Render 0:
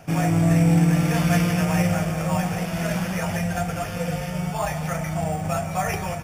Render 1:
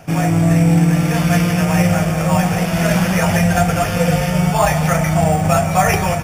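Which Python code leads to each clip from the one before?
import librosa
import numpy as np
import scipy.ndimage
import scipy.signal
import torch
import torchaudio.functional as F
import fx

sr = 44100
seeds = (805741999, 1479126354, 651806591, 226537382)

y = fx.rider(x, sr, range_db=10, speed_s=2.0)
y = y * librosa.db_to_amplitude(7.5)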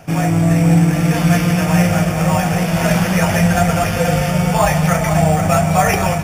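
y = x + 10.0 ** (-8.0 / 20.0) * np.pad(x, (int(480 * sr / 1000.0), 0))[:len(x)]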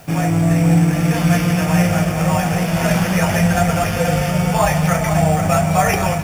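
y = fx.quant_dither(x, sr, seeds[0], bits=8, dither='triangular')
y = y * librosa.db_to_amplitude(-1.5)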